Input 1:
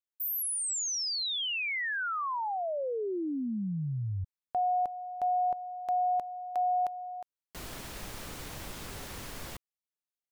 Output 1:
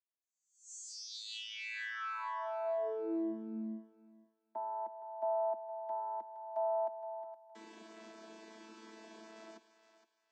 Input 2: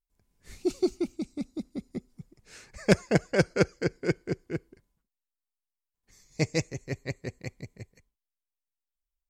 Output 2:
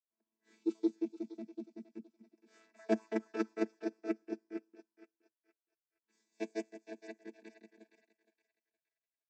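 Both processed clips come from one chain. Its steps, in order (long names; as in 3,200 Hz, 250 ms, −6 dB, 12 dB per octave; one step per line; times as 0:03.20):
channel vocoder with a chord as carrier bare fifth, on A3
high-pass filter 320 Hz 12 dB per octave
feedback echo with a high-pass in the loop 467 ms, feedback 31%, high-pass 730 Hz, level −11 dB
level −5.5 dB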